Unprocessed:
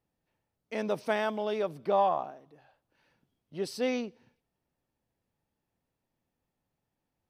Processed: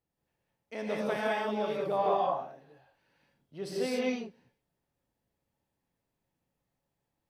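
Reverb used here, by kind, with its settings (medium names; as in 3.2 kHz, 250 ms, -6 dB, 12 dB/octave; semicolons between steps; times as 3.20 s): gated-style reverb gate 230 ms rising, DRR -4.5 dB; trim -5.5 dB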